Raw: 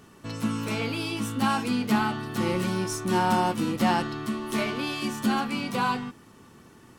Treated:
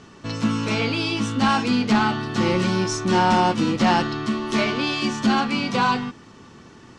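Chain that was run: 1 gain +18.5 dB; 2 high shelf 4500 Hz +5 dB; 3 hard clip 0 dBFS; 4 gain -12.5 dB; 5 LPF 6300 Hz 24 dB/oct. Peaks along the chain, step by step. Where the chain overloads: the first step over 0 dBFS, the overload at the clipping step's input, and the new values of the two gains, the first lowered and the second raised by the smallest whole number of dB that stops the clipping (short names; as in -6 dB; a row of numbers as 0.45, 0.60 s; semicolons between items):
+7.0, +7.5, 0.0, -12.5, -11.5 dBFS; step 1, 7.5 dB; step 1 +10.5 dB, step 4 -4.5 dB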